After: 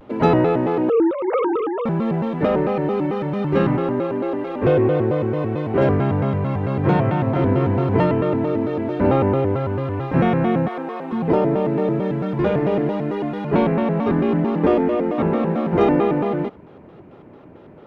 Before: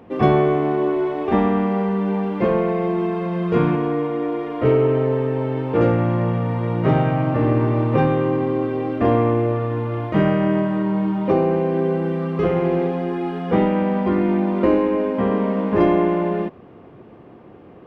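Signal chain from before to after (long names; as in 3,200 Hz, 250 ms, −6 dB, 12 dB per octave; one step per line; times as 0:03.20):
0:00.89–0:01.86: three sine waves on the formant tracks
0:10.67–0:11.12: high-pass filter 360 Hz 24 dB per octave
pitch modulation by a square or saw wave square 4.5 Hz, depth 250 cents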